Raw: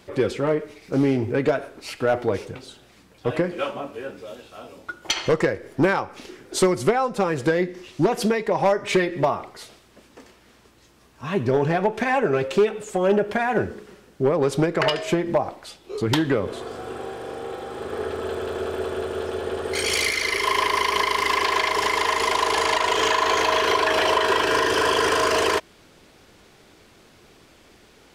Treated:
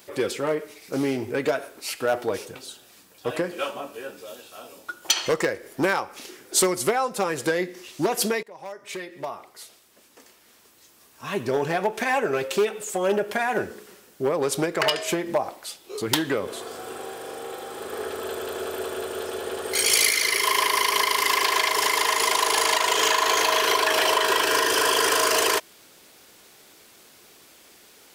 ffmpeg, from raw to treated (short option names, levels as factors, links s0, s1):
-filter_complex "[0:a]asettb=1/sr,asplit=3[s0][s1][s2];[s0]atrim=end=2.024[s3];[s1]atrim=start=2.02:end=5.26,asetpts=PTS-STARTPTS,afade=t=in:d=0.004:c=qsin,afade=t=out:st=3.236:d=0.004:c=qsin,bandreject=f=2100:w=12[s4];[s2]atrim=start=5.256[s5];[s3][s4]acrossfade=d=0.004:c1=hsin:c2=qsin[s6];[s6][s5]acrossfade=d=0.004:c1=qsin:c2=hsin,asplit=2[s7][s8];[s7]atrim=end=8.43,asetpts=PTS-STARTPTS,afade=t=out:st=8.426:d=0.004:c=hsin:silence=0.0794328[s9];[s8]atrim=start=8.43,asetpts=PTS-STARTPTS,afade=t=in:d=2.85:silence=0.0794328[s10];[s9][s10]concat=n=2:v=0:a=1,aemphasis=mode=production:type=bsi,volume=0.841"